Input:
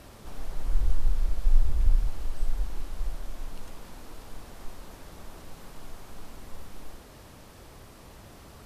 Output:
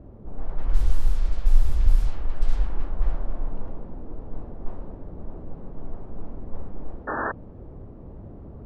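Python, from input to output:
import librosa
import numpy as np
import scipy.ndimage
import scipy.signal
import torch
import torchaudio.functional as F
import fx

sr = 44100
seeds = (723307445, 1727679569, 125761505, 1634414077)

y = fx.env_lowpass(x, sr, base_hz=400.0, full_db=-14.0)
y = fx.rider(y, sr, range_db=5, speed_s=2.0)
y = fx.spec_paint(y, sr, seeds[0], shape='noise', start_s=7.07, length_s=0.25, low_hz=210.0, high_hz=1800.0, level_db=-32.0)
y = y * librosa.db_to_amplitude(4.5)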